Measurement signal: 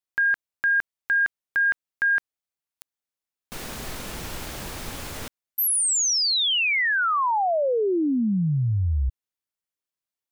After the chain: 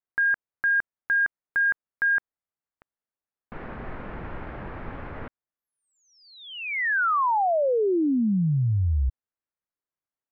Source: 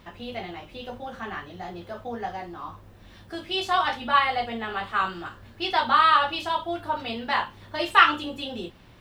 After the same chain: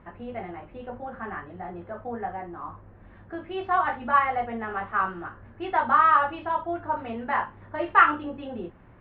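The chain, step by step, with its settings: low-pass 1.9 kHz 24 dB/octave

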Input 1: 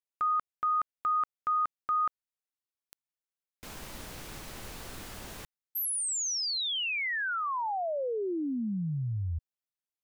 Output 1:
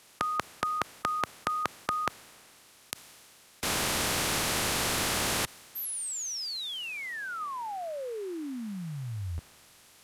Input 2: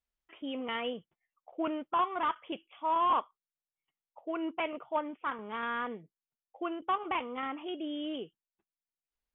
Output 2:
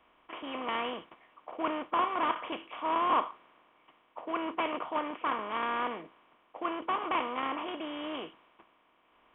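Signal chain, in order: spectral levelling over time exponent 0.4; three bands expanded up and down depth 40%; trim -4.5 dB

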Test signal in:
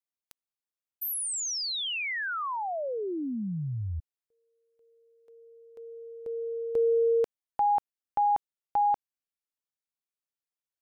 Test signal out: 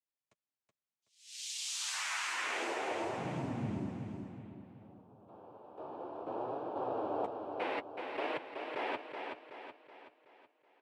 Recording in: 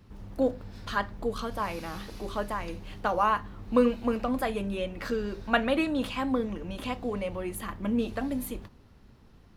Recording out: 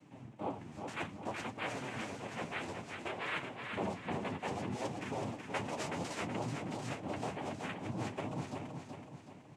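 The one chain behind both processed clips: Bessel low-pass 3.6 kHz, order 2; dynamic bell 320 Hz, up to -6 dB, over -42 dBFS, Q 1.5; reverse; compression 5:1, threshold -36 dBFS; reverse; noise-vocoded speech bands 4; flange 0.6 Hz, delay 6.3 ms, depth 6.8 ms, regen -20%; feedback delay 375 ms, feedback 47%, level -5.5 dB; trim +2.5 dB

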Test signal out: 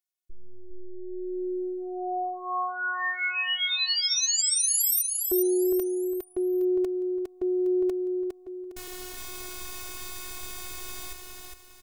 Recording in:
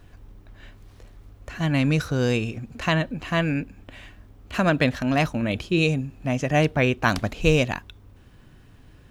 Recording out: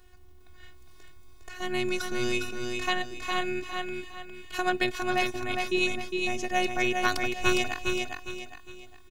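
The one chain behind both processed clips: treble shelf 3 kHz +7 dB; robot voice 365 Hz; feedback delay 408 ms, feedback 35%, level -4 dB; trim -4 dB

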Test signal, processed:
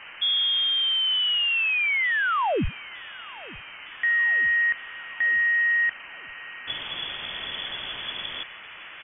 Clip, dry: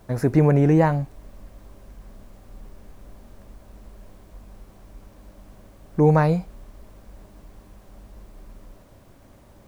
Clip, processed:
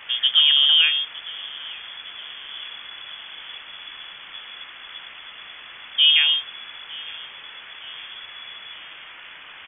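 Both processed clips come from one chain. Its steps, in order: band noise 300–2200 Hz -43 dBFS; feedback delay 911 ms, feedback 59%, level -21 dB; frequency inversion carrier 3.4 kHz

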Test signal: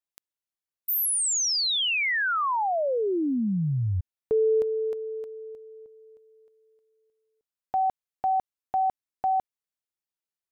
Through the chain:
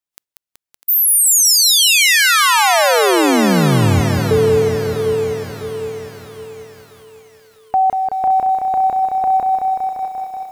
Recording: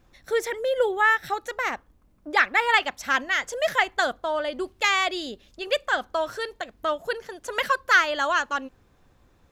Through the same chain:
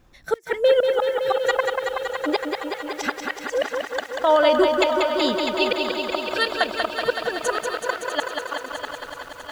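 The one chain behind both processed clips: spectral noise reduction 9 dB; inverted gate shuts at -17 dBFS, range -36 dB; thinning echo 650 ms, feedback 57%, high-pass 370 Hz, level -11 dB; loudness maximiser +20.5 dB; bit-crushed delay 188 ms, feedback 80%, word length 7-bit, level -5 dB; trim -8.5 dB

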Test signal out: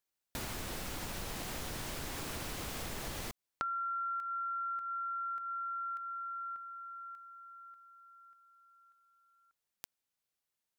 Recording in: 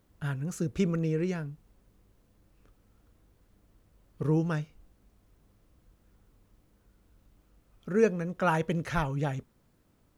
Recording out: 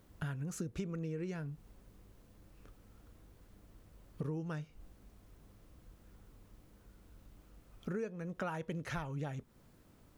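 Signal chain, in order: compression 8:1, threshold -41 dBFS; trim +4 dB

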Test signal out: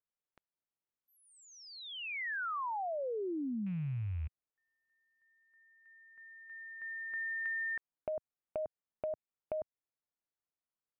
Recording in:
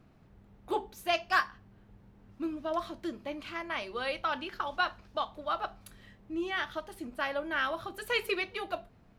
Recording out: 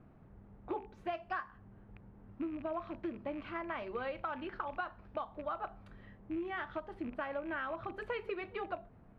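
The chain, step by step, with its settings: rattle on loud lows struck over -48 dBFS, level -36 dBFS; low-pass 1.6 kHz 12 dB/octave; dynamic bell 120 Hz, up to +4 dB, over -48 dBFS, Q 0.8; compression 6:1, threshold -37 dBFS; trim +1.5 dB

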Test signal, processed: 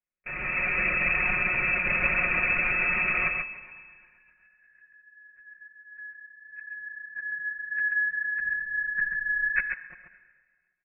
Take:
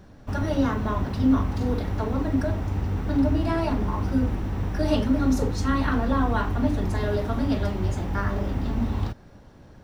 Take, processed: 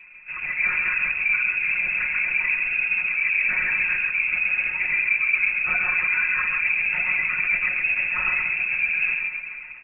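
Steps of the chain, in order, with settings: in parallel at -8 dB: hard clipper -25.5 dBFS; on the sum: feedback comb 58 Hz, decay 1.8 s, harmonics all, mix 60%; reverse; compression 6:1, threshold -36 dBFS; reverse; frequency inversion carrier 2.6 kHz; LPC vocoder at 8 kHz whisper; level rider gain up to 8.5 dB; peaking EQ 880 Hz -6 dB 0.96 oct; band-stop 780 Hz, Q 12; comb 5.5 ms, depth 82%; delay 135 ms -5.5 dB; trim +4 dB

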